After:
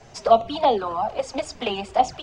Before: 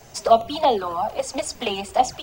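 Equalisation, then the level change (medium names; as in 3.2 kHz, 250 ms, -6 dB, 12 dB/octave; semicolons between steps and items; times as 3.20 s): distance through air 96 m; 0.0 dB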